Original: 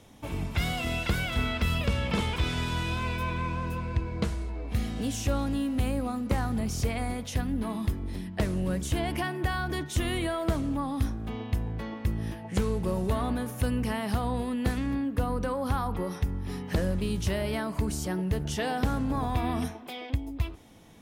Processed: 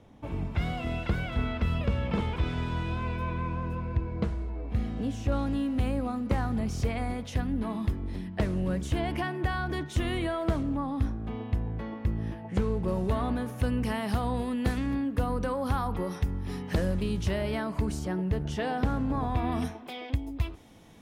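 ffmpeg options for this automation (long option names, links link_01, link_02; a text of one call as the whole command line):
ffmpeg -i in.wav -af "asetnsamples=nb_out_samples=441:pad=0,asendcmd='5.32 lowpass f 3100;10.63 lowpass f 1700;12.88 lowpass f 3500;13.82 lowpass f 8700;17.03 lowpass f 3900;17.99 lowpass f 2200;19.52 lowpass f 5600;20.06 lowpass f 9400',lowpass=frequency=1200:poles=1" out.wav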